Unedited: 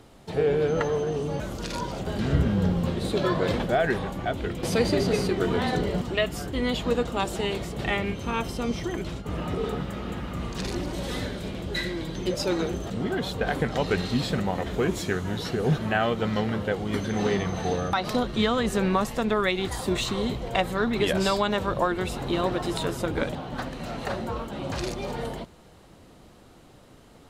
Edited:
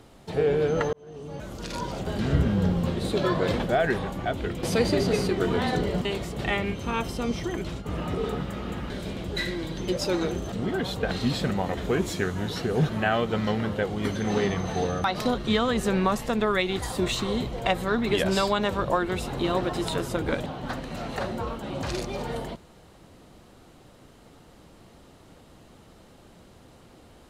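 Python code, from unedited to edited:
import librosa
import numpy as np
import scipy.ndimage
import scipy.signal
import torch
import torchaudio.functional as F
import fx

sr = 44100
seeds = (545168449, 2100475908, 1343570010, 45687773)

y = fx.edit(x, sr, fx.fade_in_span(start_s=0.93, length_s=0.97),
    fx.cut(start_s=6.05, length_s=1.4),
    fx.cut(start_s=10.3, length_s=0.98),
    fx.cut(start_s=13.49, length_s=0.51), tone=tone)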